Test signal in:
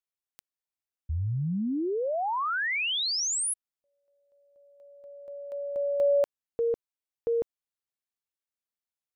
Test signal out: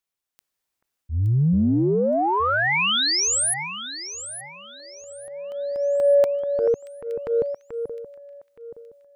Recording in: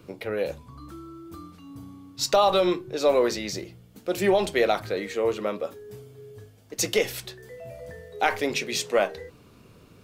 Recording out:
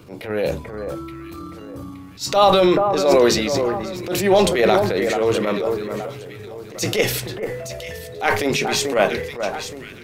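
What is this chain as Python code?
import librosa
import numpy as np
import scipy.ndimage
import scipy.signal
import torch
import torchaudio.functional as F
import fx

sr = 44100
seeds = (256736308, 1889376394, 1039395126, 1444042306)

y = fx.dynamic_eq(x, sr, hz=140.0, q=0.89, threshold_db=-40.0, ratio=4.0, max_db=4)
y = fx.echo_alternate(y, sr, ms=435, hz=1800.0, feedback_pct=56, wet_db=-7.5)
y = fx.transient(y, sr, attack_db=-11, sustain_db=5)
y = F.gain(torch.from_numpy(y), 7.0).numpy()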